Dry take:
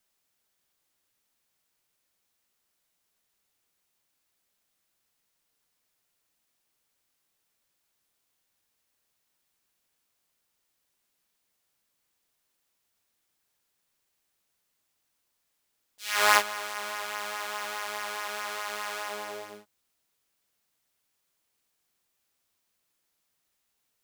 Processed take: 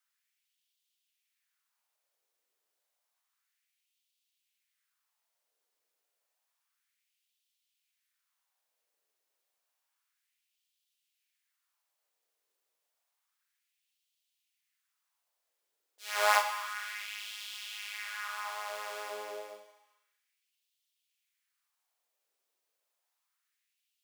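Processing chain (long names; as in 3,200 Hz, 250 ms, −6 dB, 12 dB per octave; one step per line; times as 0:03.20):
four-comb reverb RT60 1.3 s, combs from 31 ms, DRR 7.5 dB
auto-filter high-pass sine 0.3 Hz 430–3,200 Hz
level −7.5 dB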